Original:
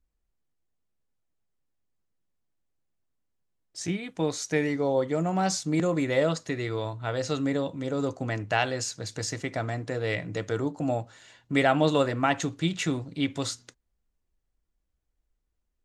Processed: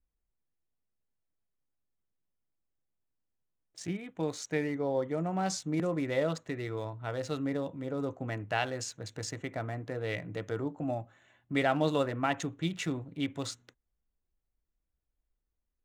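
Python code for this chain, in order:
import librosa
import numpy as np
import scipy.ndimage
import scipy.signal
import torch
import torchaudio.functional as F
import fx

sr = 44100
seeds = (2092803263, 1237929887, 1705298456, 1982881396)

y = fx.wiener(x, sr, points=9)
y = fx.notch_comb(y, sr, f0_hz=470.0, at=(10.84, 11.55))
y = y * librosa.db_to_amplitude(-5.5)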